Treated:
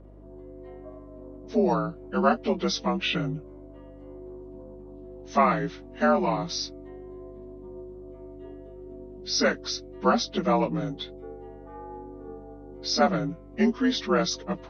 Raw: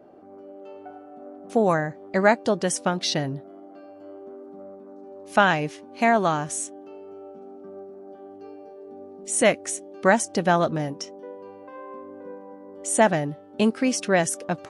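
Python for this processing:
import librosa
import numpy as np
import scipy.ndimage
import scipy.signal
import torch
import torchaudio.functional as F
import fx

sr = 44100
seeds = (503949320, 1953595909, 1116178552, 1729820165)

y = fx.partial_stretch(x, sr, pct=85)
y = fx.add_hum(y, sr, base_hz=50, snr_db=22)
y = fx.peak_eq(y, sr, hz=530.0, db=-6.5, octaves=0.31)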